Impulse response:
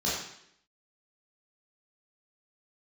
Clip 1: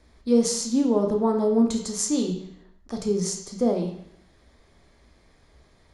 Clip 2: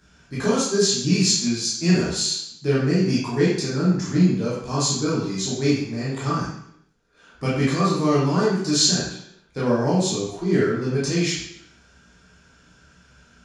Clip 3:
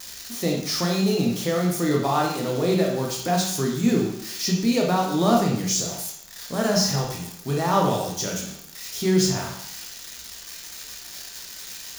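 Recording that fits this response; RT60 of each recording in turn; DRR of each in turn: 2; 0.70, 0.70, 0.70 s; 2.5, -8.0, -1.5 dB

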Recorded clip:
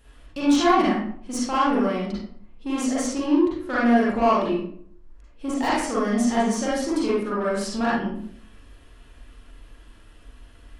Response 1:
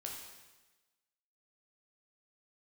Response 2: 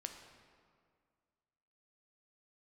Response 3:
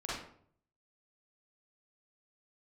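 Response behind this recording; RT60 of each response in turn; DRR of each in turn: 3; 1.2, 2.0, 0.60 s; -1.5, 4.5, -8.0 dB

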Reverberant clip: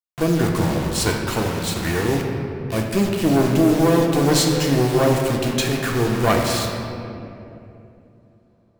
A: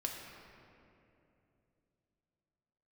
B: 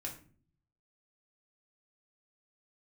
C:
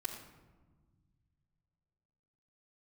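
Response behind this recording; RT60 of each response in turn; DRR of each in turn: A; 2.9, 0.45, 1.3 s; -0.5, -1.5, -7.0 dB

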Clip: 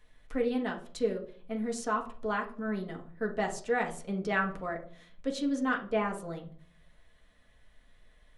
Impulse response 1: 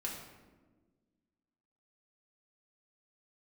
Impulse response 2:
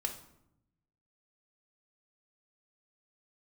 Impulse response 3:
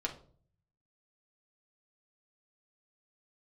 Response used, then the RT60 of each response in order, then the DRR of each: 3; 1.4, 0.80, 0.50 s; -3.5, 3.0, -0.5 dB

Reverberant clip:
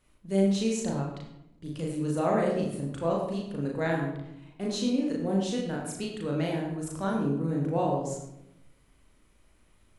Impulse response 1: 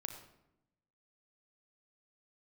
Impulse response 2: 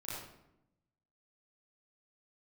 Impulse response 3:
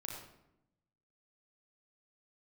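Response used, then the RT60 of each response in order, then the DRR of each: 3; 0.85, 0.85, 0.85 s; 3.5, -11.0, -2.5 dB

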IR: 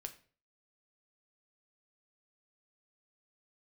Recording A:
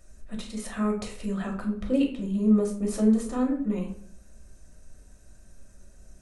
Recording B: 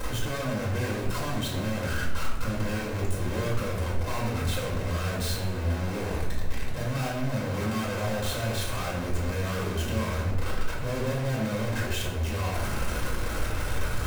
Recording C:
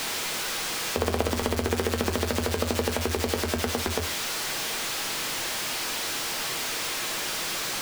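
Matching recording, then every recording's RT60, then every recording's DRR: C; 0.60, 1.0, 0.40 s; -0.5, -5.0, 6.0 dB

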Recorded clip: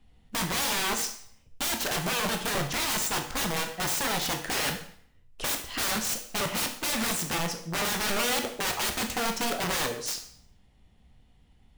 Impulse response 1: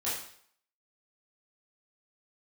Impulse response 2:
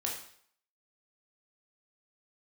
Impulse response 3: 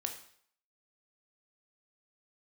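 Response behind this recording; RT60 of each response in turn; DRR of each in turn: 3; 0.60, 0.60, 0.60 s; -10.0, -2.0, 4.0 dB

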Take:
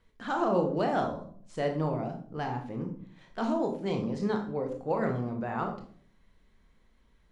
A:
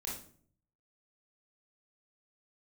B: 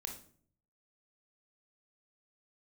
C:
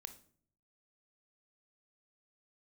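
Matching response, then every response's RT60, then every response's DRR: B; 0.50, 0.50, 0.55 s; -4.5, 3.0, 9.5 dB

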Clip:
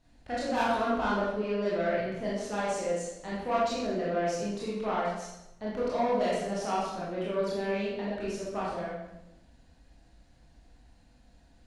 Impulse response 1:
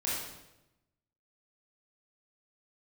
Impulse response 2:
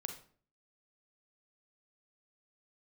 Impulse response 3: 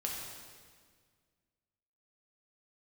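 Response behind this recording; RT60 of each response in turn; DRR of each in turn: 1; 0.95, 0.50, 1.8 s; -7.5, 5.0, -2.5 dB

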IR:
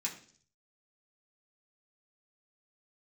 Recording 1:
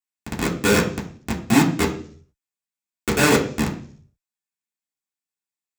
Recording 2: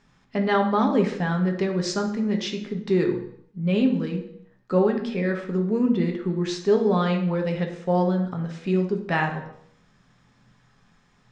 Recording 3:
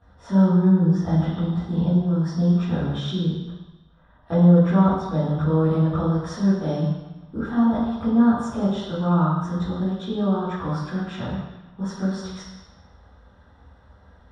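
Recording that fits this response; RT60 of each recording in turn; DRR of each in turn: 1; 0.50 s, not exponential, 1.1 s; -4.5, 3.5, -14.0 dB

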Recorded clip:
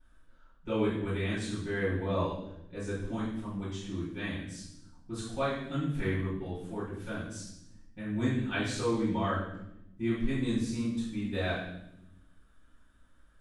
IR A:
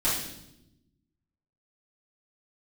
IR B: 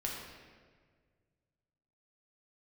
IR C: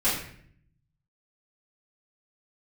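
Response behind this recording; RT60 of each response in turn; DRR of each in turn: A; 0.85, 1.7, 0.60 s; -11.0, -3.0, -11.0 dB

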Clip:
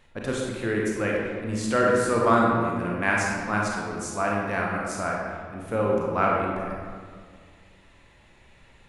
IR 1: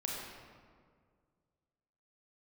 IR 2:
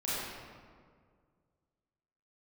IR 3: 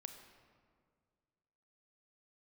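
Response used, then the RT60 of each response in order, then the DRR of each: 1; 1.9, 1.9, 2.0 s; -3.0, -10.5, 6.0 dB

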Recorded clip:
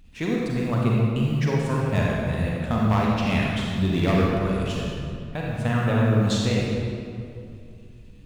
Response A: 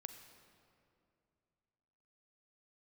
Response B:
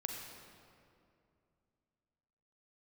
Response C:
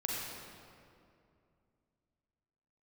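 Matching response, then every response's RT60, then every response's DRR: C; 2.6, 2.5, 2.5 s; 7.0, 1.0, -4.0 dB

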